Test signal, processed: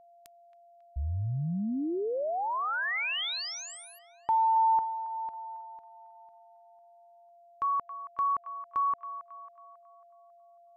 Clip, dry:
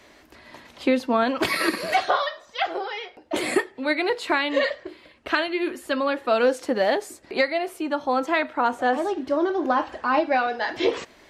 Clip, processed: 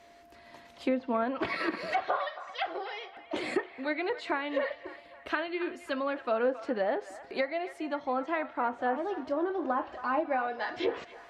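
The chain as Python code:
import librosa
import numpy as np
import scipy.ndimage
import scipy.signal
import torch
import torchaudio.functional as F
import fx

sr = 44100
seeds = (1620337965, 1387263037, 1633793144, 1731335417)

y = fx.env_lowpass_down(x, sr, base_hz=1700.0, full_db=-17.0)
y = fx.echo_wet_bandpass(y, sr, ms=273, feedback_pct=45, hz=1400.0, wet_db=-12.5)
y = y + 10.0 ** (-47.0 / 20.0) * np.sin(2.0 * np.pi * 690.0 * np.arange(len(y)) / sr)
y = y * 10.0 ** (-8.0 / 20.0)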